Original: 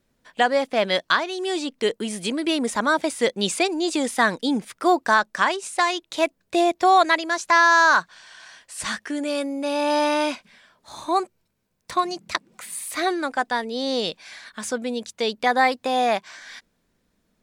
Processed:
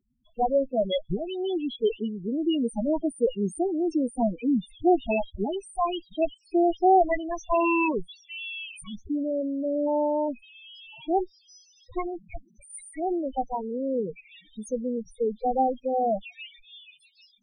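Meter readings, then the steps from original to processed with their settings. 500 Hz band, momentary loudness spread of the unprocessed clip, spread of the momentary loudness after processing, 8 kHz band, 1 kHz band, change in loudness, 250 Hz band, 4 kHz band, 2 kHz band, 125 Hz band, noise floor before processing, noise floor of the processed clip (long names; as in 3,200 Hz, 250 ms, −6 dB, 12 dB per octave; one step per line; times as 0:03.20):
−1.5 dB, 13 LU, 17 LU, −15.0 dB, −6.5 dB, −5.0 dB, −0.5 dB, −13.0 dB, −17.0 dB, can't be measured, −71 dBFS, −62 dBFS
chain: lower of the sound and its delayed copy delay 0.34 ms
echo through a band-pass that steps 790 ms, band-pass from 3,600 Hz, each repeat 0.7 octaves, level −9.5 dB
spectral peaks only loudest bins 4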